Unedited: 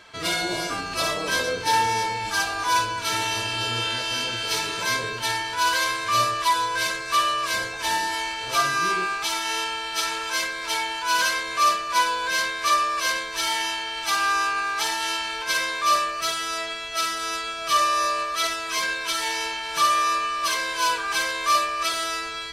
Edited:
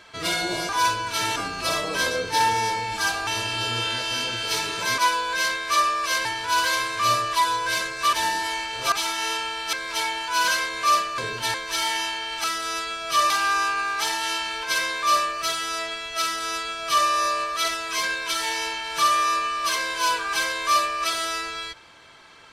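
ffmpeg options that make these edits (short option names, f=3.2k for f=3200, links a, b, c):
-filter_complex "[0:a]asplit=13[a][b][c][d][e][f][g][h][i][j][k][l][m];[a]atrim=end=0.692[n];[b]atrim=start=2.598:end=3.272[o];[c]atrim=start=0.688:end=2.602[p];[d]atrim=start=3.268:end=4.982[q];[e]atrim=start=11.918:end=13.192[r];[f]atrim=start=5.338:end=7.222[s];[g]atrim=start=7.808:end=8.602[t];[h]atrim=start=9.188:end=10.002[u];[i]atrim=start=10.468:end=11.922[v];[j]atrim=start=4.978:end=5.342[w];[k]atrim=start=13.188:end=14.092[x];[l]atrim=start=17.008:end=17.872[y];[m]atrim=start=14.088[z];[n][o]acrossfade=d=0.004:c1=hsin:c2=hsin[aa];[aa][p]acrossfade=d=0.004:c1=hsin:c2=hsin[ab];[ab][q]acrossfade=d=0.004:c1=hsin:c2=hsin[ac];[ac][r]acrossfade=d=0.004:c1=hsin:c2=hsin[ad];[ad][s]acrossfade=d=0.004:c1=hsin:c2=hsin[ae];[ae][t]acrossfade=d=0.004:c1=hsin:c2=hsin[af];[af][u]acrossfade=d=0.004:c1=hsin:c2=hsin[ag];[ag][v]acrossfade=d=0.004:c1=hsin:c2=hsin[ah];[ah][w]acrossfade=d=0.004:c1=hsin:c2=hsin[ai];[ai][x]acrossfade=d=0.004:c1=hsin:c2=hsin[aj];[aj][y]acrossfade=d=0.004:c1=hsin:c2=hsin[ak];[ak][z]acrossfade=d=0.004:c1=hsin:c2=hsin"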